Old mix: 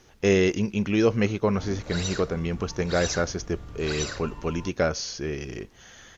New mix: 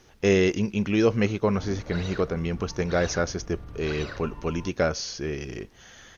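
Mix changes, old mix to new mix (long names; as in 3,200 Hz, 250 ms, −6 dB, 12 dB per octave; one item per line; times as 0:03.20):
background: add high-frequency loss of the air 260 metres
master: add parametric band 6,900 Hz −2.5 dB 0.23 octaves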